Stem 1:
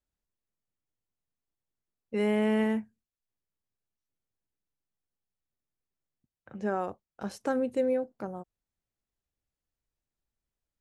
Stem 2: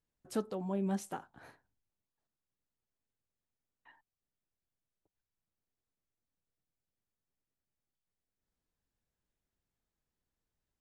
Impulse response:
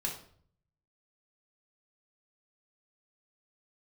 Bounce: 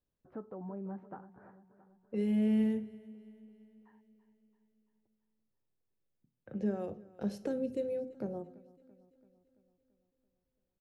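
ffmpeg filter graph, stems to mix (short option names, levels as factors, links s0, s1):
-filter_complex "[0:a]equalizer=f=125:t=o:w=1:g=5,equalizer=f=250:t=o:w=1:g=6,equalizer=f=500:t=o:w=1:g=9,equalizer=f=1000:t=o:w=1:g=-10,equalizer=f=8000:t=o:w=1:g=-8,acrossover=split=200|3000[s0][s1][s2];[s1]acompressor=threshold=0.0224:ratio=6[s3];[s0][s3][s2]amix=inputs=3:normalize=0,volume=0.562,asplit=3[s4][s5][s6];[s5]volume=0.335[s7];[s6]volume=0.1[s8];[1:a]lowpass=f=1500:w=0.5412,lowpass=f=1500:w=1.3066,alimiter=level_in=2.37:limit=0.0631:level=0:latency=1:release=91,volume=0.422,volume=0.668,asplit=3[s9][s10][s11];[s10]volume=0.178[s12];[s11]apad=whole_len=476480[s13];[s4][s13]sidechaincompress=threshold=0.00158:ratio=8:attack=16:release=1260[s14];[2:a]atrim=start_sample=2205[s15];[s7][s15]afir=irnorm=-1:irlink=0[s16];[s8][s12]amix=inputs=2:normalize=0,aecho=0:1:336|672|1008|1344|1680|2016|2352|2688:1|0.56|0.314|0.176|0.0983|0.0551|0.0308|0.0173[s17];[s14][s9][s16][s17]amix=inputs=4:normalize=0"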